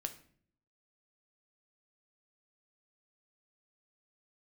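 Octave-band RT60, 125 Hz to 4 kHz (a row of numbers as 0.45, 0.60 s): 0.85, 0.85, 0.60, 0.45, 0.50, 0.40 s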